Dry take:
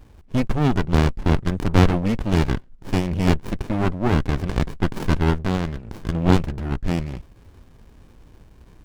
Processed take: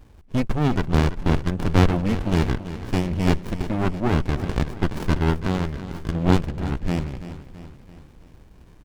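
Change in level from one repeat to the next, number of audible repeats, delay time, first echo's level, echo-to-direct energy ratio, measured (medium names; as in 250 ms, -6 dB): -5.5 dB, 4, 333 ms, -13.0 dB, -11.5 dB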